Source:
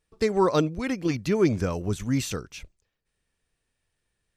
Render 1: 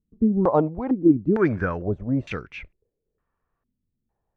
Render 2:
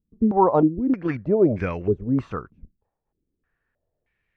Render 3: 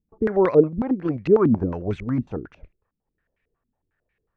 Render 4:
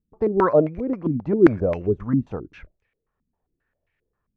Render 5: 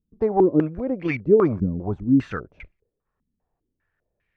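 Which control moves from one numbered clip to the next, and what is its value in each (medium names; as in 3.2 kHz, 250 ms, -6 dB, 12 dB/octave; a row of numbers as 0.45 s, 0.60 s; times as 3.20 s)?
step-sequenced low-pass, rate: 2.2 Hz, 3.2 Hz, 11 Hz, 7.5 Hz, 5 Hz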